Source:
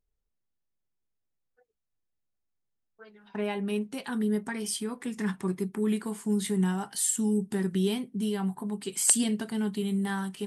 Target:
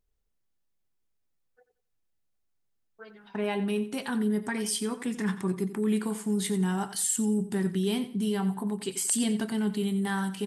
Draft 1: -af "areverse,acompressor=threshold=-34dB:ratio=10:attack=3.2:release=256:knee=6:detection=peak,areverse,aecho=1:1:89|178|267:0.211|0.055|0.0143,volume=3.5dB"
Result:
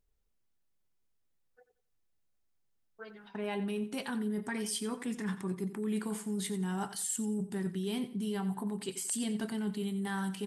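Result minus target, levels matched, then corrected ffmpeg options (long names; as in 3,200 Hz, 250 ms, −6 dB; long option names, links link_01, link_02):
downward compressor: peak gain reduction +8 dB
-af "areverse,acompressor=threshold=-25dB:ratio=10:attack=3.2:release=256:knee=6:detection=peak,areverse,aecho=1:1:89|178|267:0.211|0.055|0.0143,volume=3.5dB"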